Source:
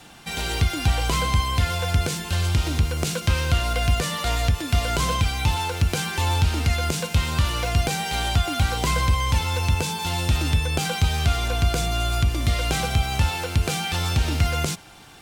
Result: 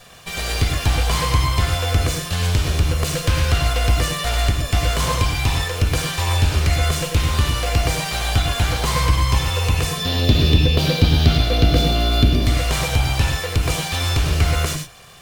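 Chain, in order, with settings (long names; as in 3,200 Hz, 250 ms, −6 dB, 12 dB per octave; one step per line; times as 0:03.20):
lower of the sound and its delayed copy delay 1.7 ms
0:09.97–0:12.46: octave-band graphic EQ 125/250/500/1,000/2,000/4,000/8,000 Hz +4/+10/+4/−4/−3/+9/−12 dB
reverb whose tail is shaped and stops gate 130 ms rising, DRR 4.5 dB
level +3 dB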